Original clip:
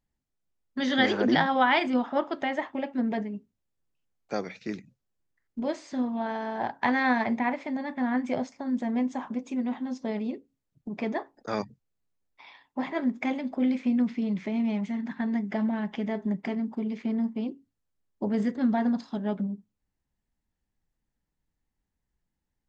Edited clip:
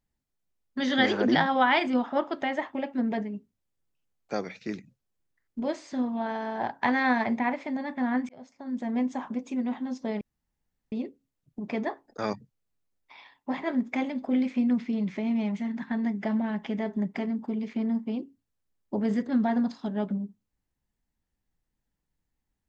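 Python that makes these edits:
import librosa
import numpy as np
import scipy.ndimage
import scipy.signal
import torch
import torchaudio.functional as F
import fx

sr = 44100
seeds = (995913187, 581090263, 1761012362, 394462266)

y = fx.edit(x, sr, fx.fade_in_span(start_s=8.29, length_s=0.71),
    fx.insert_room_tone(at_s=10.21, length_s=0.71), tone=tone)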